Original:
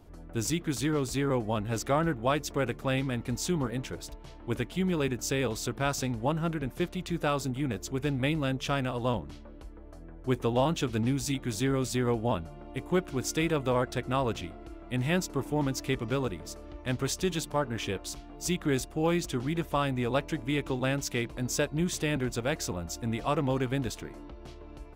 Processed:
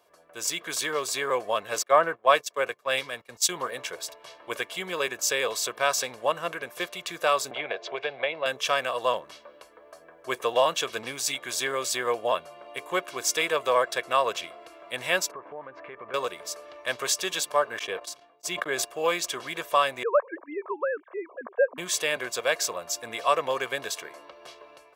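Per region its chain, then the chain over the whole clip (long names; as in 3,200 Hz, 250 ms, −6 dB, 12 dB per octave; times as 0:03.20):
0:01.83–0:03.49: noise gate −35 dBFS, range −15 dB + multiband upward and downward expander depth 100%
0:07.51–0:08.46: loudspeaker in its box 180–3,300 Hz, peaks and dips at 190 Hz −8 dB, 270 Hz −10 dB, 700 Hz +7 dB, 1,200 Hz −6 dB, 1,800 Hz −3 dB, 2,900 Hz −3 dB + multiband upward and downward compressor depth 100%
0:15.31–0:16.14: low-pass filter 1,900 Hz 24 dB per octave + downward compressor 8 to 1, threshold −34 dBFS
0:17.79–0:18.85: noise gate −38 dBFS, range −39 dB + high-shelf EQ 2,500 Hz −8 dB + level that may fall only so fast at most 70 dB per second
0:20.03–0:21.78: three sine waves on the formant tracks + low-pass filter 1,400 Hz 24 dB per octave
whole clip: high-pass filter 670 Hz 12 dB per octave; comb filter 1.8 ms, depth 55%; automatic gain control gain up to 7 dB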